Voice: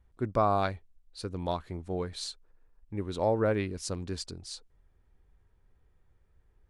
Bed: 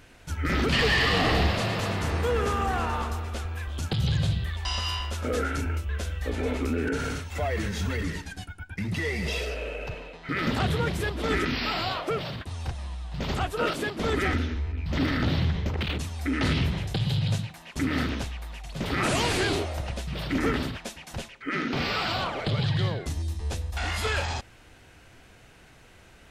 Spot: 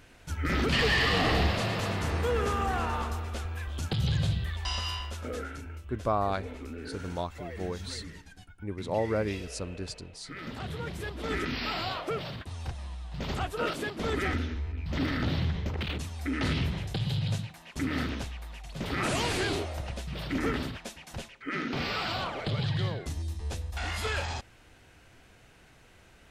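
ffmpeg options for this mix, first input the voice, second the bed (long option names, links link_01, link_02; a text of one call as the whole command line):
ffmpeg -i stem1.wav -i stem2.wav -filter_complex "[0:a]adelay=5700,volume=-2dB[link_01];[1:a]volume=6.5dB,afade=type=out:start_time=4.68:duration=0.94:silence=0.298538,afade=type=in:start_time=10.56:duration=1.12:silence=0.354813[link_02];[link_01][link_02]amix=inputs=2:normalize=0" out.wav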